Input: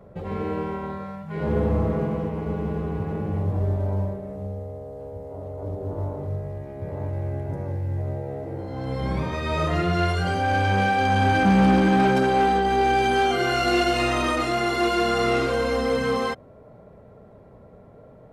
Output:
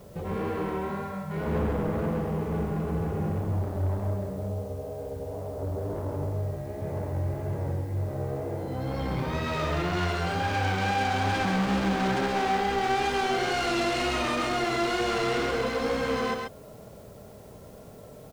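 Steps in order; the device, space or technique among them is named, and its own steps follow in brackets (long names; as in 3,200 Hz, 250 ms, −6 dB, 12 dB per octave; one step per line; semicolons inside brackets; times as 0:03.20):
compact cassette (soft clipping −26 dBFS, distortion −8 dB; low-pass filter 9,400 Hz 12 dB per octave; tape wow and flutter; white noise bed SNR 31 dB)
single-tap delay 133 ms −4 dB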